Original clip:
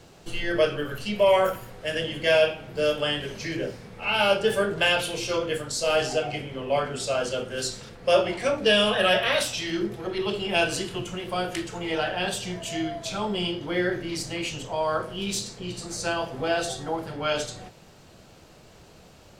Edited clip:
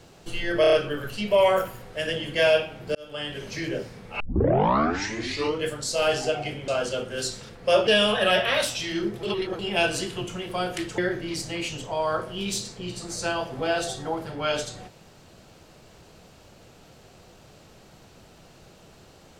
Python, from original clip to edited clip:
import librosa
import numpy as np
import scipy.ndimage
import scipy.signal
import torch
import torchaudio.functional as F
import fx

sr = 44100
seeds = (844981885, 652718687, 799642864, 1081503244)

y = fx.edit(x, sr, fx.stutter(start_s=0.61, slice_s=0.03, count=5),
    fx.fade_in_span(start_s=2.83, length_s=0.55),
    fx.tape_start(start_s=4.08, length_s=1.45),
    fx.cut(start_s=6.56, length_s=0.52),
    fx.cut(start_s=8.27, length_s=0.38),
    fx.reverse_span(start_s=10.01, length_s=0.36),
    fx.cut(start_s=11.76, length_s=2.03), tone=tone)